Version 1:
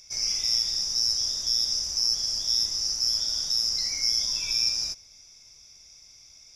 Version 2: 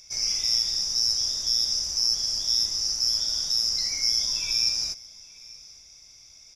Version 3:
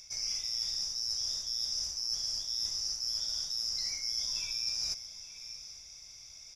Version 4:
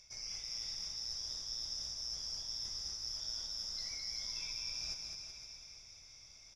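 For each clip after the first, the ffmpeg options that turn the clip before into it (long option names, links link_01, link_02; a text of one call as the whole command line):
ffmpeg -i in.wav -af "aecho=1:1:872:0.075,volume=1dB" out.wav
ffmpeg -i in.wav -af "equalizer=frequency=300:width=1.2:gain=-4.5,areverse,acompressor=threshold=-32dB:ratio=6,areverse" out.wav
ffmpeg -i in.wav -filter_complex "[0:a]lowpass=frequency=2800:poles=1,asplit=2[link_01][link_02];[link_02]aecho=0:1:210|378|512.4|619.9|705.9:0.631|0.398|0.251|0.158|0.1[link_03];[link_01][link_03]amix=inputs=2:normalize=0,volume=-3dB" out.wav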